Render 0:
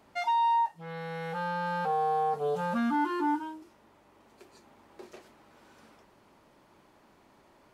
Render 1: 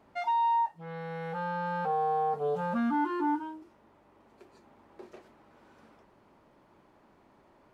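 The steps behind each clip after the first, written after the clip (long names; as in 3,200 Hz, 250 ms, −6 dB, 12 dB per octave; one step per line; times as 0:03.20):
high-shelf EQ 2,900 Hz −11 dB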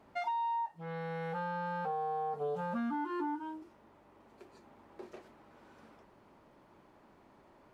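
downward compressor 6 to 1, threshold −33 dBFS, peak gain reduction 8.5 dB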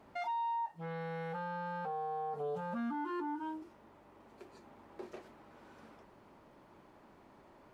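brickwall limiter −33.5 dBFS, peak gain reduction 6.5 dB
level +1.5 dB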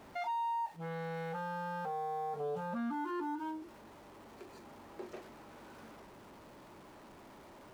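converter with a step at zero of −55 dBFS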